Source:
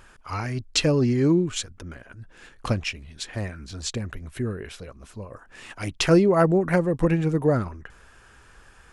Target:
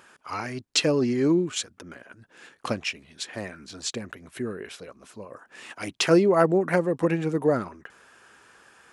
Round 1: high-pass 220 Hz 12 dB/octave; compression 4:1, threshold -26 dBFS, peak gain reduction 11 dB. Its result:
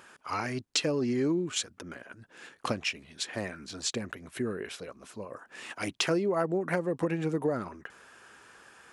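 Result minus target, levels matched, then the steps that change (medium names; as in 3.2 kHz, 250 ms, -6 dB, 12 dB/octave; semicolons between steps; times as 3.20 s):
compression: peak gain reduction +11 dB
remove: compression 4:1, threshold -26 dBFS, peak gain reduction 11 dB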